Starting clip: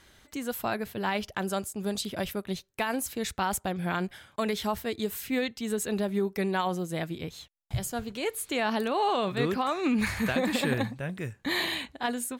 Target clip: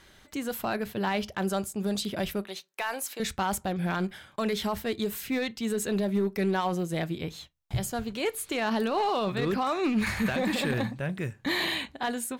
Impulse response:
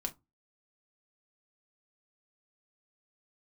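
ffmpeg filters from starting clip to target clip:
-filter_complex "[0:a]alimiter=limit=-21dB:level=0:latency=1:release=16,asettb=1/sr,asplit=3[a][b][c];[a]atrim=end=2.454[d];[b]atrim=start=2.45:end=3.2,asetpts=PTS-STARTPTS,afade=t=in:d=0.004:c=qsin,afade=t=out:st=0.746:d=0.004:c=qsin,highpass=570[e];[c]atrim=start=3.196[f];[d][e]acrossfade=d=0.004:c1=hsin:c2=qsin[g];[g][f]acrossfade=d=0.004:c1=qsin:c2=hsin,asoftclip=type=hard:threshold=-23.5dB,asplit=2[h][i];[1:a]atrim=start_sample=2205,afade=t=out:st=0.25:d=0.01,atrim=end_sample=11466,lowpass=6.9k[j];[i][j]afir=irnorm=-1:irlink=0,volume=-9.5dB[k];[h][k]amix=inputs=2:normalize=0"

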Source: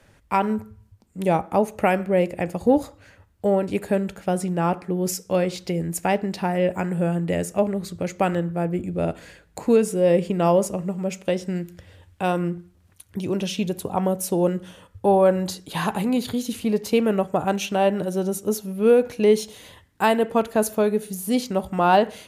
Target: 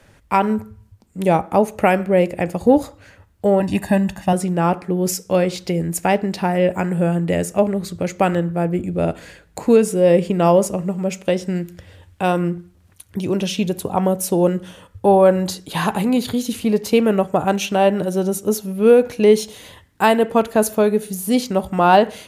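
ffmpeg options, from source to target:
-filter_complex "[0:a]asettb=1/sr,asplit=3[a][b][c];[a]atrim=end=3.604[d];[b]atrim=start=3.6:end=4.33,asetpts=PTS-STARTPTS,afade=t=in:d=0.004:c=qsin,afade=t=out:st=0.726:d=0.004:c=qsin,aecho=1:1:1.1:0.94,atrim=end_sample=32193[e];[c]atrim=start=4.326[f];[d][e]acrossfade=d=0.004:c1=hsin:c2=qsin[g];[g][f]acrossfade=d=0.004:c1=qsin:c2=hsin,volume=4.5dB"

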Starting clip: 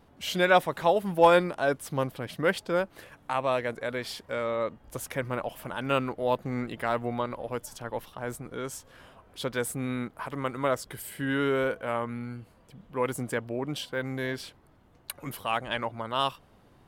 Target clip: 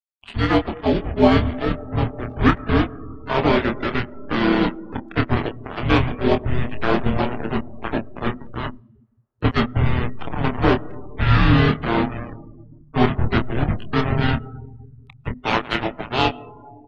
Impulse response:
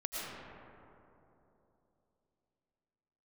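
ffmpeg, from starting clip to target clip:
-filter_complex "[0:a]aecho=1:1:1071|2142:0.075|0.0112,aresample=8000,acrusher=bits=4:mix=0:aa=0.5,aresample=44100,lowshelf=f=180:g=11,asplit=4[a][b][c][d];[b]asetrate=33038,aresample=44100,atempo=1.33484,volume=-10dB[e];[c]asetrate=55563,aresample=44100,atempo=0.793701,volume=-12dB[f];[d]asetrate=58866,aresample=44100,atempo=0.749154,volume=-6dB[g];[a][e][f][g]amix=inputs=4:normalize=0,aeval=exprs='sgn(val(0))*max(abs(val(0))-0.0237,0)':c=same,afreqshift=-250,asplit=2[h][i];[1:a]atrim=start_sample=2205[j];[i][j]afir=irnorm=-1:irlink=0,volume=-19dB[k];[h][k]amix=inputs=2:normalize=0,adynamicequalizer=threshold=0.00631:dfrequency=1000:dqfactor=2.3:tfrequency=1000:tqfactor=2.3:attack=5:release=100:ratio=0.375:range=2:mode=cutabove:tftype=bell,bandreject=f=520:w=12,asplit=2[l][m];[m]adelay=27,volume=-6dB[n];[l][n]amix=inputs=2:normalize=0,afftdn=nr=30:nf=-44,dynaudnorm=f=150:g=9:m=12dB,volume=-1dB"

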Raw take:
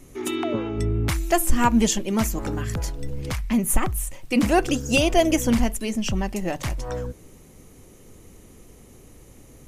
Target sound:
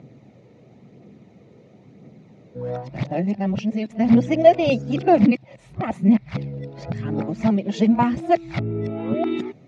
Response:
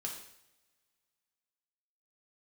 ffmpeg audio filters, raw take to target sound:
-af "areverse,aphaser=in_gain=1:out_gain=1:delay=2.3:decay=0.32:speed=0.97:type=triangular,highpass=f=120:w=0.5412,highpass=f=120:w=1.3066,equalizer=f=130:t=q:w=4:g=6,equalizer=f=200:t=q:w=4:g=7,equalizer=f=660:t=q:w=4:g=6,equalizer=f=1.1k:t=q:w=4:g=-7,equalizer=f=1.6k:t=q:w=4:g=-7,equalizer=f=3k:t=q:w=4:g=-9,lowpass=f=3.8k:w=0.5412,lowpass=f=3.8k:w=1.3066"

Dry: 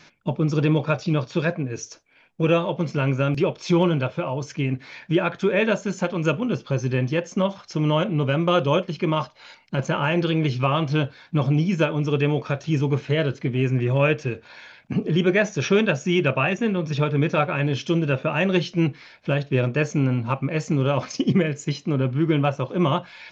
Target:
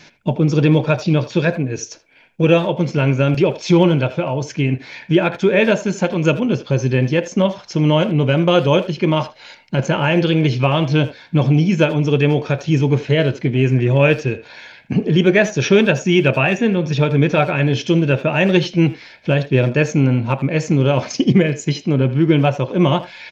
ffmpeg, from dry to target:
-filter_complex "[0:a]equalizer=f=1.2k:w=4:g=-8.5,asplit=2[a][b];[b]adelay=80,highpass=300,lowpass=3.4k,asoftclip=type=hard:threshold=-17.5dB,volume=-14dB[c];[a][c]amix=inputs=2:normalize=0,volume=6.5dB"

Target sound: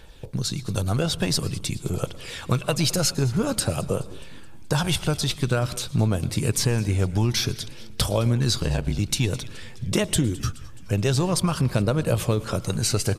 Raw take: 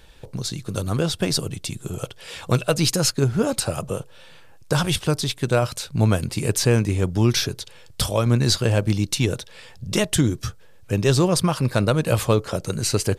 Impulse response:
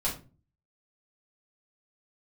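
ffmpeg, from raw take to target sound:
-filter_complex "[0:a]aphaser=in_gain=1:out_gain=1:delay=1.5:decay=0.32:speed=0.5:type=triangular,acompressor=threshold=-18dB:ratio=6,asettb=1/sr,asplit=3[a][b][c];[a]atrim=end=8.594[d];[b]atrim=start=8.59:end=8.99,asetpts=PTS-STARTPTS,afade=t=in:d=0.004:c=qsin,afade=t=out:st=0.396:d=0.004:c=qsin,aeval=exprs='val(0)*sin(2*PI*40*n/s)':c=same[e];[c]atrim=start=8.986[f];[d][e]acrossfade=d=0.004:c1=hsin:c2=qsin[g];[g][f]acrossfade=d=0.004:c1=qsin:c2=hsin,asplit=6[h][i][j][k][l][m];[i]adelay=212,afreqshift=-110,volume=-20dB[n];[j]adelay=424,afreqshift=-220,volume=-24.9dB[o];[k]adelay=636,afreqshift=-330,volume=-29.8dB[p];[l]adelay=848,afreqshift=-440,volume=-34.6dB[q];[m]adelay=1060,afreqshift=-550,volume=-39.5dB[r];[h][n][o][p][q][r]amix=inputs=6:normalize=0,asplit=2[s][t];[1:a]atrim=start_sample=2205,adelay=107[u];[t][u]afir=irnorm=-1:irlink=0,volume=-26dB[v];[s][v]amix=inputs=2:normalize=0"

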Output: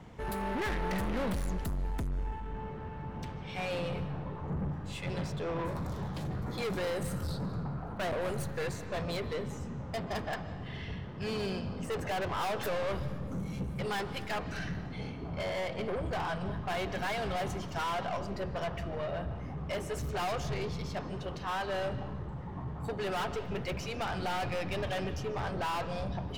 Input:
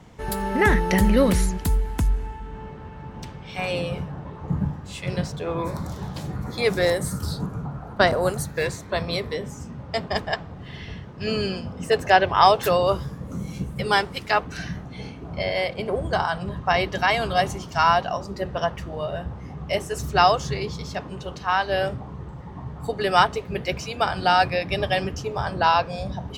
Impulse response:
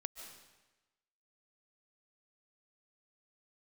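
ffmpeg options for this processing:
-filter_complex "[0:a]aeval=exprs='(tanh(28.2*val(0)+0.1)-tanh(0.1))/28.2':c=same,asplit=2[a][b];[1:a]atrim=start_sample=2205,lowpass=4.1k[c];[b][c]afir=irnorm=-1:irlink=0,volume=1dB[d];[a][d]amix=inputs=2:normalize=0,volume=-7dB"

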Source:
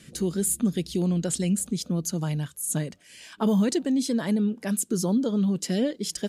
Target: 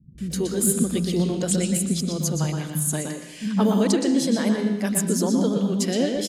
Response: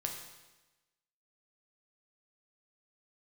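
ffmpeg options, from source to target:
-filter_complex "[0:a]asplit=2[a][b];[b]asetrate=55563,aresample=44100,atempo=0.793701,volume=-18dB[c];[a][c]amix=inputs=2:normalize=0,acrossover=split=200[d][e];[e]adelay=180[f];[d][f]amix=inputs=2:normalize=0,asplit=2[g][h];[1:a]atrim=start_sample=2205,lowpass=7.7k,adelay=120[i];[h][i]afir=irnorm=-1:irlink=0,volume=-4dB[j];[g][j]amix=inputs=2:normalize=0,volume=3.5dB"

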